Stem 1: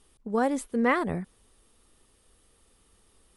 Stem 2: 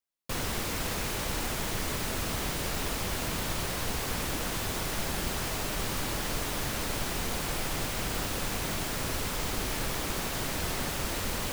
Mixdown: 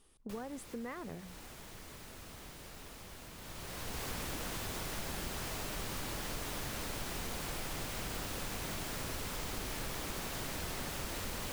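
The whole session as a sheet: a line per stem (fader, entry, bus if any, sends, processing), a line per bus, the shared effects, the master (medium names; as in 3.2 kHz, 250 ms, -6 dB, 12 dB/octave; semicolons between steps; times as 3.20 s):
-4.0 dB, 0.00 s, no send, compression, threshold -29 dBFS, peak gain reduction 10.5 dB; hum notches 60/120/180 Hz
+1.0 dB, 0.00 s, no send, auto duck -19 dB, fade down 0.45 s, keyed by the first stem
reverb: none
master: compression 2:1, threshold -44 dBFS, peak gain reduction 10.5 dB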